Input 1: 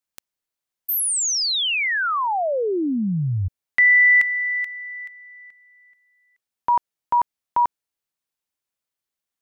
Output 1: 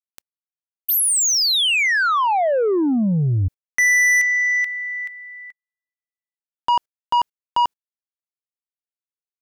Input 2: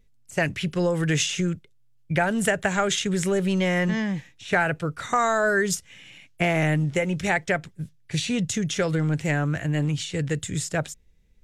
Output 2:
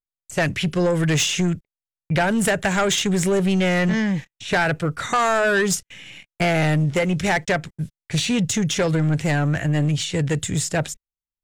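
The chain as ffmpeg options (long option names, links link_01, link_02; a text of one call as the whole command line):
ffmpeg -i in.wav -af "agate=range=-46dB:threshold=-48dB:ratio=16:release=44:detection=rms,asoftclip=type=tanh:threshold=-20.5dB,volume=6.5dB" out.wav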